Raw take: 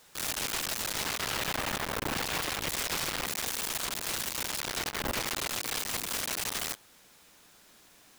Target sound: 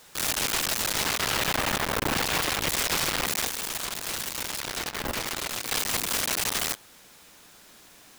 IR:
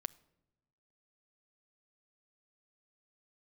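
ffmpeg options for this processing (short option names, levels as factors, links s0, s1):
-filter_complex "[0:a]asettb=1/sr,asplit=3[s0][s1][s2];[s0]atrim=end=3.474[s3];[s1]atrim=start=3.47:end=5.71,asetpts=PTS-STARTPTS,afade=t=in:d=0.004:c=qsin,afade=t=out:st=2.236:d=0.004:c=qsin,flanger=delay=3.4:depth=9.1:regen=-86:speed=1.5:shape=triangular[s4];[s2]atrim=start=5.706[s5];[s3][s4]acrossfade=d=0.004:c1=hsin:c2=qsin[s6];[s6][s5]acrossfade=d=0.004:c1=qsin:c2=hsin,volume=2"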